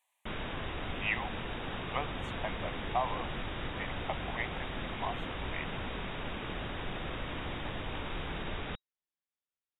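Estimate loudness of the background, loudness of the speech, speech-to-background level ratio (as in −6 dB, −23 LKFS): −39.0 LKFS, −40.0 LKFS, −1.0 dB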